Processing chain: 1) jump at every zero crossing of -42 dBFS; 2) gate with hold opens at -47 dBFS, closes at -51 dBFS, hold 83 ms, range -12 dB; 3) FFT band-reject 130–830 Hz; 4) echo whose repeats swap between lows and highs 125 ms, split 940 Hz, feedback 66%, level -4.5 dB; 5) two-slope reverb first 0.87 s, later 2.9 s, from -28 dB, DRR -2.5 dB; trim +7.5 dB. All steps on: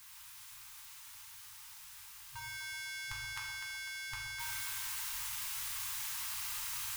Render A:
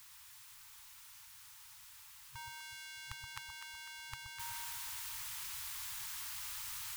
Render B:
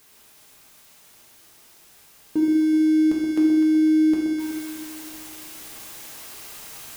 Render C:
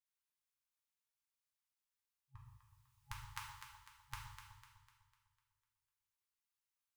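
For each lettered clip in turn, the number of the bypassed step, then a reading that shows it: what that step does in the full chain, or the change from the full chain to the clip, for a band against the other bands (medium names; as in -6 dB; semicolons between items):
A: 5, echo-to-direct 4.0 dB to -6.0 dB; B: 3, crest factor change -6.0 dB; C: 1, distortion -18 dB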